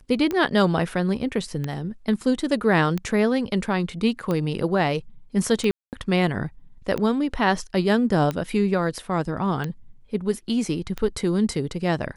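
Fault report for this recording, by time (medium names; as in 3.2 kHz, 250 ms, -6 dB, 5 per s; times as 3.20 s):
tick 45 rpm -14 dBFS
5.71–5.93 s: dropout 218 ms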